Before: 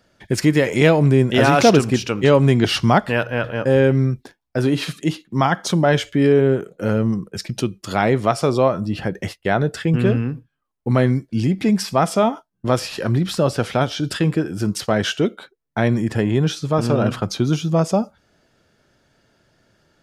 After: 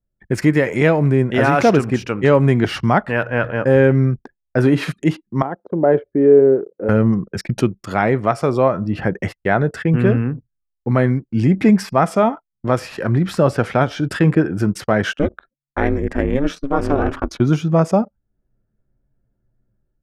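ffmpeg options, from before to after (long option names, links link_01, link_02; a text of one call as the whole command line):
ffmpeg -i in.wav -filter_complex "[0:a]asettb=1/sr,asplit=3[link_01][link_02][link_03];[link_01]atrim=end=5.424[link_04];[link_02]atrim=start=5.42:end=6.89,asetpts=PTS-STARTPTS,afade=type=in:duration=0.004:curve=qsin,afade=type=out:start_time=1.466:duration=0.004:curve=qsin,bandpass=frequency=420:width_type=q:width=1.8[link_05];[link_03]atrim=start=6.886[link_06];[link_04][link_05]acrossfade=duration=0.004:curve1=hsin:curve2=qsin[link_07];[link_07][link_06]acrossfade=duration=0.004:curve1=qsin:curve2=hsin,asplit=3[link_08][link_09][link_10];[link_08]afade=type=out:start_time=15.13:duration=0.02[link_11];[link_09]aeval=exprs='val(0)*sin(2*PI*140*n/s)':channel_layout=same,afade=type=in:start_time=15.13:duration=0.02,afade=type=out:start_time=17.39:duration=0.02[link_12];[link_10]afade=type=in:start_time=17.39:duration=0.02[link_13];[link_11][link_12][link_13]amix=inputs=3:normalize=0,anlmdn=2.51,highshelf=frequency=2600:width_type=q:width=1.5:gain=-7,dynaudnorm=framelen=130:gausssize=5:maxgain=11.5dB,volume=-1dB" out.wav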